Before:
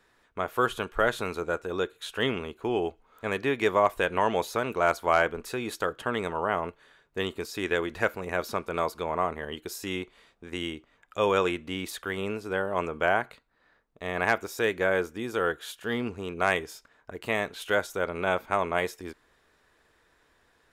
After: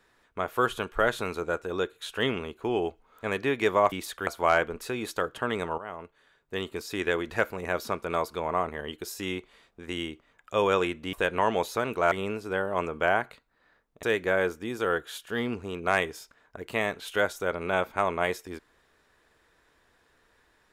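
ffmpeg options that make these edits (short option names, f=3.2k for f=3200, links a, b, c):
-filter_complex "[0:a]asplit=7[a][b][c][d][e][f][g];[a]atrim=end=3.922[h];[b]atrim=start=11.768:end=12.122[i];[c]atrim=start=4.908:end=6.42,asetpts=PTS-STARTPTS,afade=t=out:st=1.508:d=0.004:c=hsin:silence=0.188365[j];[d]atrim=start=6.42:end=11.772,asetpts=PTS-STARTPTS,afade=t=in:d=1.11:silence=0.188365[k];[e]atrim=start=3.918:end=4.912[l];[f]atrim=start=12.118:end=14.032[m];[g]atrim=start=14.568[n];[h][i]acrossfade=d=0.004:c1=hsin:c2=hsin[o];[j][k]concat=n=2:v=0:a=1[p];[o][p]acrossfade=d=0.004:c1=hsin:c2=hsin[q];[q][l]acrossfade=d=0.004:c1=hsin:c2=hsin[r];[r][m]acrossfade=d=0.004:c1=hsin:c2=hsin[s];[s][n]acrossfade=d=0.004:c1=hsin:c2=hsin"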